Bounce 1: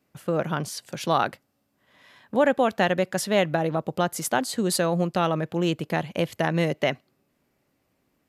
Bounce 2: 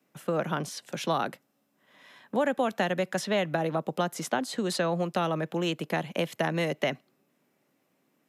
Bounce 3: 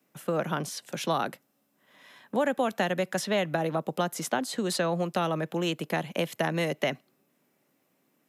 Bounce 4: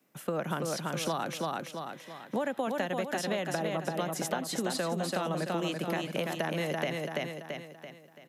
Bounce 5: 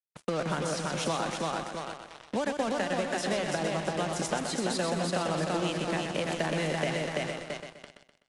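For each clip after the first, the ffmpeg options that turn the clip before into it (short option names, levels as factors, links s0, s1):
-filter_complex "[0:a]highpass=f=150:w=0.5412,highpass=f=150:w=1.3066,bandreject=f=4600:w=12,acrossover=split=270|560|5800[s0][s1][s2][s3];[s0]acompressor=threshold=0.0224:ratio=4[s4];[s1]acompressor=threshold=0.02:ratio=4[s5];[s2]acompressor=threshold=0.0447:ratio=4[s6];[s3]acompressor=threshold=0.00501:ratio=4[s7];[s4][s5][s6][s7]amix=inputs=4:normalize=0"
-af "highshelf=f=9500:g=7"
-filter_complex "[0:a]asplit=2[s0][s1];[s1]aecho=0:1:335|670|1005|1340|1675:0.596|0.256|0.11|0.0474|0.0204[s2];[s0][s2]amix=inputs=2:normalize=0,acompressor=threshold=0.0398:ratio=6"
-af "acrusher=bits=5:mix=0:aa=0.5,aecho=1:1:126|252|378|504|630:0.473|0.185|0.072|0.0281|0.0109,volume=1.12" -ar 22050 -c:a aac -b:a 64k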